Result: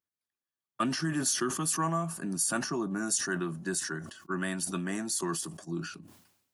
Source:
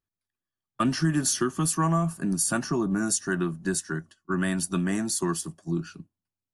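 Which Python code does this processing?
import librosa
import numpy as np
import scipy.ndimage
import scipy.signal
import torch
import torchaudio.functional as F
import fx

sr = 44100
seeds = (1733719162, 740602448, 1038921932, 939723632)

y = fx.highpass(x, sr, hz=280.0, slope=6)
y = fx.sustainer(y, sr, db_per_s=70.0)
y = y * librosa.db_to_amplitude(-3.5)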